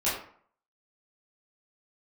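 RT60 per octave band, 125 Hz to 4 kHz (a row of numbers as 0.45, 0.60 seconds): 0.50, 0.50, 0.50, 0.55, 0.45, 0.35 seconds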